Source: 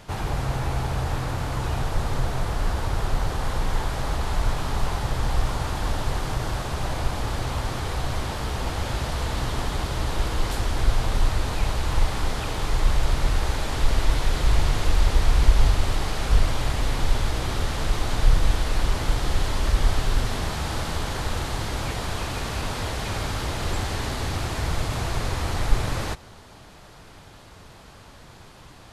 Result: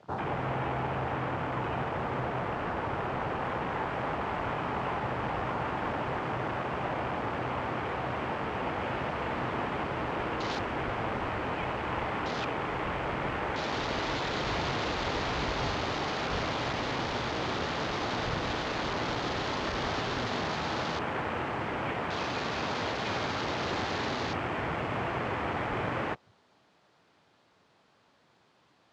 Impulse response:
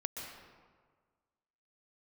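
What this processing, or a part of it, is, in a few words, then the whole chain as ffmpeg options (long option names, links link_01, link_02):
over-cleaned archive recording: -af "highpass=190,lowpass=5100,afwtdn=0.0126"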